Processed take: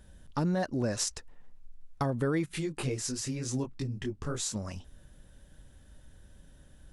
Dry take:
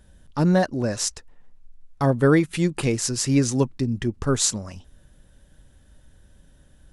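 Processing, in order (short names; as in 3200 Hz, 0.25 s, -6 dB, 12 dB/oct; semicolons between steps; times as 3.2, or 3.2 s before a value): limiter -14 dBFS, peak gain reduction 7.5 dB; compressor 2:1, threshold -28 dBFS, peak gain reduction 6 dB; 2.47–4.54 detuned doubles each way 26 cents -> 45 cents; gain -1.5 dB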